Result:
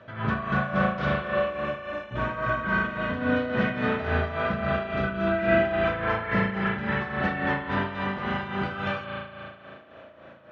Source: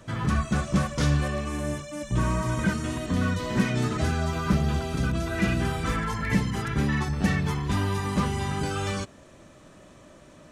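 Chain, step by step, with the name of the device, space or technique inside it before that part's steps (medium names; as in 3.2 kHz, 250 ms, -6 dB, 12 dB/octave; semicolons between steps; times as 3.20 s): combo amplifier with spring reverb and tremolo (spring tank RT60 2.6 s, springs 36 ms, chirp 40 ms, DRR -3 dB; tremolo 3.6 Hz, depth 64%; cabinet simulation 110–3400 Hz, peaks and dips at 170 Hz -9 dB, 300 Hz -7 dB, 620 Hz +6 dB, 1.5 kHz +6 dB)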